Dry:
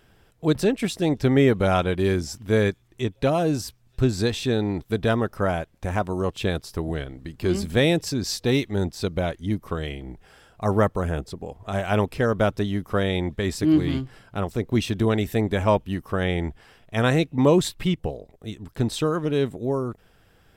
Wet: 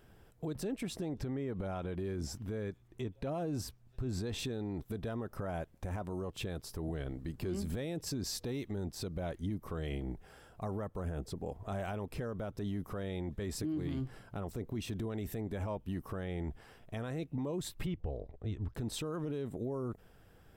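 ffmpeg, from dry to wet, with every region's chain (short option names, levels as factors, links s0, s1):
-filter_complex "[0:a]asettb=1/sr,asplit=3[s0][s1][s2];[s0]atrim=end=0.814[s3];[s1]atrim=start=0.81:end=4.39,asetpts=PTS-STARTPTS,afade=t=in:d=0.004:c=qsin,afade=t=out:st=3.576:d=0.004:c=qsin,highshelf=f=5600:g=-6.5,acompressor=threshold=0.0398:ratio=6:attack=3.2:release=140:knee=1:detection=peak[s4];[s2]atrim=start=4.386[s5];[s3][s4]acrossfade=d=0.004:c1=hsin:c2=qsin[s6];[s6][s5]acrossfade=d=0.004:c1=qsin:c2=hsin,asettb=1/sr,asplit=3[s7][s8][s9];[s7]atrim=end=17.864[s10];[s8]atrim=start=17.86:end=18.75,asetpts=PTS-STARTPTS,afade=t=in:d=0.004:c=qsin,afade=t=out:st=0.886:d=0.004:c=qsin,lowpass=3700,lowshelf=f=120:t=q:w=1.5:g=6.5[s11];[s9]atrim=start=18.746[s12];[s10][s11]acrossfade=d=0.004:c1=hsin:c2=qsin[s13];[s13][s12]acrossfade=d=0.004:c1=qsin:c2=hsin,equalizer=f=3400:w=0.43:g=-6.5,acompressor=threshold=0.0562:ratio=10,alimiter=level_in=1.41:limit=0.0631:level=0:latency=1:release=30,volume=0.708,volume=0.794"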